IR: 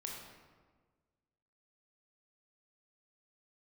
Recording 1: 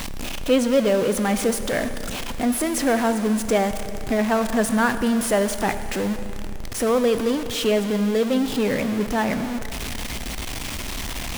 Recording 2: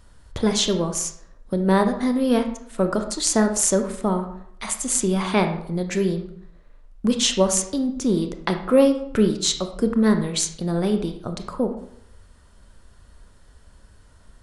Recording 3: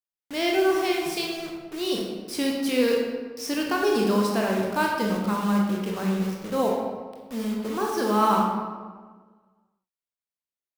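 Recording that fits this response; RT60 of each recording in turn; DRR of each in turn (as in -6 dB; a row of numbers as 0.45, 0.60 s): 3; 2.9, 0.70, 1.5 s; 9.5, 6.0, -1.5 dB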